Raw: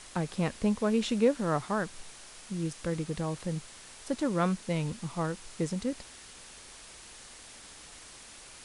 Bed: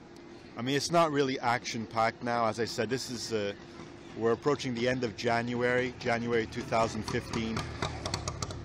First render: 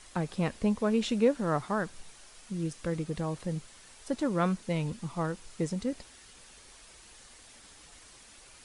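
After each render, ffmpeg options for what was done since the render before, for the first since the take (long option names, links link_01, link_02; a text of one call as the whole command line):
ffmpeg -i in.wav -af "afftdn=noise_reduction=6:noise_floor=-50" out.wav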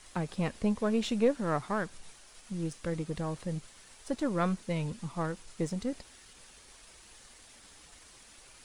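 ffmpeg -i in.wav -af "aeval=exprs='if(lt(val(0),0),0.708*val(0),val(0))':channel_layout=same" out.wav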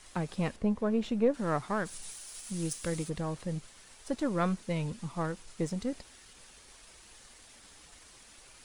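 ffmpeg -i in.wav -filter_complex "[0:a]asettb=1/sr,asplit=3[link_01][link_02][link_03];[link_01]atrim=end=0.564[link_04];[link_02]atrim=start=0.56:end=1.34,asetpts=PTS-STARTPTS,afade=type=in:duration=0.004:curve=qsin,afade=type=out:start_time=0.776:duration=0.004:curve=qsin,highshelf=frequency=2300:gain=-11.5[link_05];[link_03]atrim=start=1.336[link_06];[link_04][link_05]acrossfade=duration=0.004:curve1=hsin:curve2=qsin[link_07];[link_07][link_06]acrossfade=duration=0.004:curve1=qsin:curve2=hsin,asplit=3[link_08][link_09][link_10];[link_08]afade=type=out:start_time=1.85:duration=0.02[link_11];[link_09]aemphasis=mode=production:type=75kf,afade=type=in:start_time=1.85:duration=0.02,afade=type=out:start_time=3.08:duration=0.02[link_12];[link_10]afade=type=in:start_time=3.08:duration=0.02[link_13];[link_11][link_12][link_13]amix=inputs=3:normalize=0" out.wav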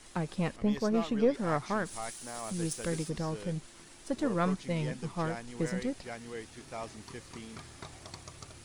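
ffmpeg -i in.wav -i bed.wav -filter_complex "[1:a]volume=-13dB[link_01];[0:a][link_01]amix=inputs=2:normalize=0" out.wav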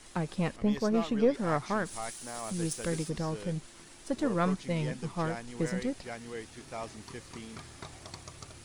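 ffmpeg -i in.wav -af "volume=1dB" out.wav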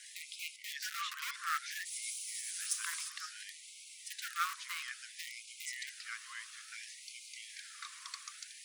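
ffmpeg -i in.wav -filter_complex "[0:a]asplit=2[link_01][link_02];[link_02]aeval=exprs='(mod(15.8*val(0)+1,2)-1)/15.8':channel_layout=same,volume=-10.5dB[link_03];[link_01][link_03]amix=inputs=2:normalize=0,afftfilt=real='re*gte(b*sr/1024,970*pow(2100/970,0.5+0.5*sin(2*PI*0.59*pts/sr)))':imag='im*gte(b*sr/1024,970*pow(2100/970,0.5+0.5*sin(2*PI*0.59*pts/sr)))':win_size=1024:overlap=0.75" out.wav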